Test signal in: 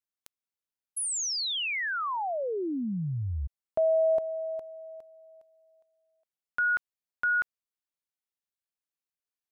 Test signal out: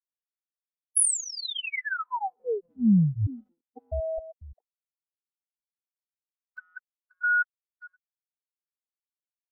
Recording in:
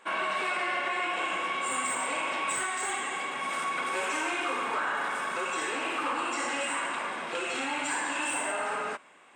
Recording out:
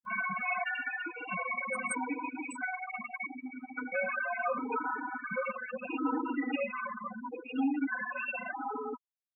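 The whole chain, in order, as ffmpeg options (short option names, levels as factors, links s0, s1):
-af "bass=f=250:g=15,treble=f=4000:g=-4,aecho=1:1:4:0.95,aecho=1:1:529|1058|1587:0.15|0.0554|0.0205,afftfilt=real='re*gte(hypot(re,im),0.126)':imag='im*gte(hypot(re,im),0.126)':win_size=1024:overlap=0.75,aexciter=amount=9:drive=6.5:freq=8600,acompressor=mode=upward:threshold=0.01:ratio=2.5:attack=0.86:release=270:knee=2.83:detection=peak,afftfilt=real='re*gt(sin(2*PI*0.76*pts/sr)*(1-2*mod(floor(b*sr/1024/250),2)),0)':imag='im*gt(sin(2*PI*0.76*pts/sr)*(1-2*mod(floor(b*sr/1024/250),2)),0)':win_size=1024:overlap=0.75"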